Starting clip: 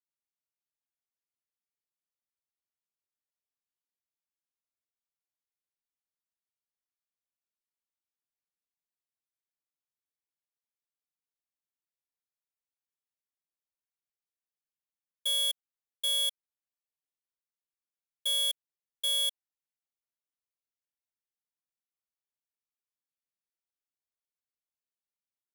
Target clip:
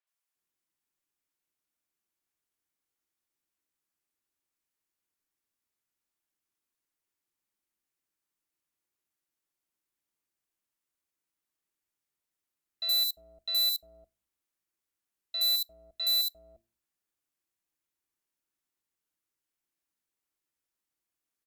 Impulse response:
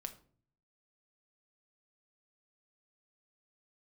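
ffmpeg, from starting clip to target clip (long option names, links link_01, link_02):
-filter_complex "[0:a]equalizer=frequency=280:width_type=o:width=0.41:gain=7,bandreject=frequency=95.24:width_type=h:width=4,bandreject=frequency=190.48:width_type=h:width=4,bandreject=frequency=285.72:width_type=h:width=4,asoftclip=type=tanh:threshold=-33dB,asetrate=52479,aresample=44100,acrossover=split=580|4000[link_01][link_02][link_03];[link_03]adelay=70[link_04];[link_01]adelay=350[link_05];[link_05][link_02][link_04]amix=inputs=3:normalize=0,asplit=2[link_06][link_07];[1:a]atrim=start_sample=2205,asetrate=70560,aresample=44100[link_08];[link_07][link_08]afir=irnorm=-1:irlink=0,volume=-4.5dB[link_09];[link_06][link_09]amix=inputs=2:normalize=0,volume=6dB"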